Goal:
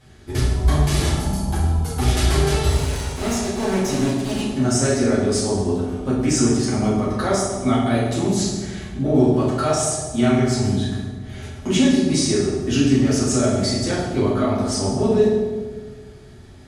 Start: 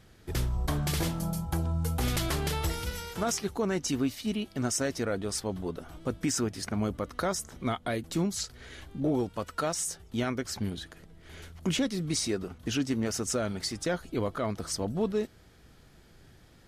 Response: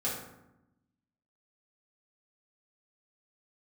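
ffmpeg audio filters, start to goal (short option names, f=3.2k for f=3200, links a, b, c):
-filter_complex "[0:a]asettb=1/sr,asplit=3[a][b][c];[a]atrim=end=2.704[d];[b]atrim=start=2.7:end=4.42,asetpts=PTS-STARTPTS,afade=t=in:d=0.004:c=qsin,afade=t=out:st=1.716:d=0.004:c=qsin,acrusher=bits=3:dc=4:mix=0:aa=0.000001[e];[c]atrim=start=4.416[f];[d][e]acrossfade=d=0.004:c1=hsin:c2=qsin[g];[g][f]acrossfade=d=0.004:c1=qsin:c2=hsin[h];[1:a]atrim=start_sample=2205,asetrate=22491,aresample=44100[i];[h][i]afir=irnorm=-1:irlink=0"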